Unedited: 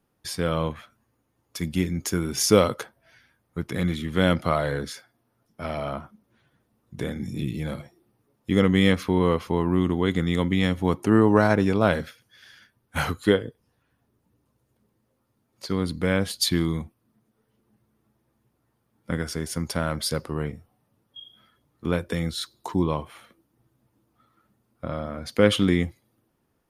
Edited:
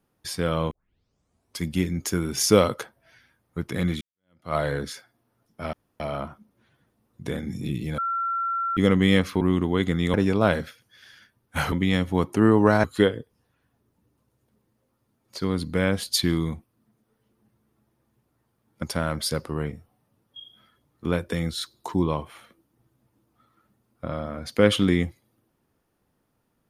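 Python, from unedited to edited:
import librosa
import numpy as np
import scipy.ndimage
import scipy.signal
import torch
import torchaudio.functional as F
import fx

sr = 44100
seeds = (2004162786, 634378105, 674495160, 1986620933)

y = fx.edit(x, sr, fx.tape_start(start_s=0.71, length_s=0.91),
    fx.fade_in_span(start_s=4.01, length_s=0.54, curve='exp'),
    fx.insert_room_tone(at_s=5.73, length_s=0.27),
    fx.bleep(start_s=7.71, length_s=0.79, hz=1360.0, db=-23.5),
    fx.cut(start_s=9.14, length_s=0.55),
    fx.move(start_s=10.42, length_s=1.12, to_s=13.12),
    fx.cut(start_s=19.11, length_s=0.52), tone=tone)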